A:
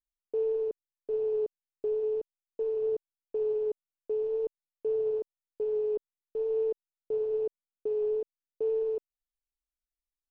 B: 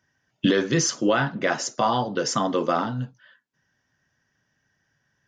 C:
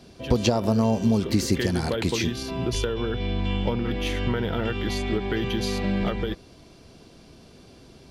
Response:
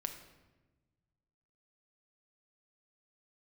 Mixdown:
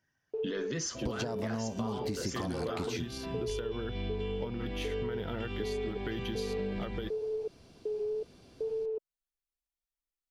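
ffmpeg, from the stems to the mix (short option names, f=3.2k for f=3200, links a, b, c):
-filter_complex "[0:a]volume=1dB[a];[1:a]volume=-4dB[b];[2:a]adelay=750,volume=-7.5dB[c];[a][b]amix=inputs=2:normalize=0,flanger=delay=0.4:depth=4.6:regen=-68:speed=0.79:shape=sinusoidal,alimiter=limit=-24dB:level=0:latency=1:release=22,volume=0dB[d];[c][d]amix=inputs=2:normalize=0,acompressor=threshold=-31dB:ratio=6"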